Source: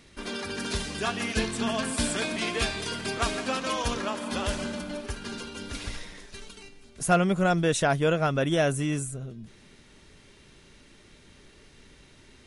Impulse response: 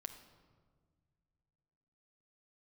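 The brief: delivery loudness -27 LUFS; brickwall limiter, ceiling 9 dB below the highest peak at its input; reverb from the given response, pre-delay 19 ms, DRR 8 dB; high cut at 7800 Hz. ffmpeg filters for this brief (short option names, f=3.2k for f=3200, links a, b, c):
-filter_complex "[0:a]lowpass=7.8k,alimiter=limit=-20dB:level=0:latency=1,asplit=2[a][b];[1:a]atrim=start_sample=2205,adelay=19[c];[b][c]afir=irnorm=-1:irlink=0,volume=-4dB[d];[a][d]amix=inputs=2:normalize=0,volume=3.5dB"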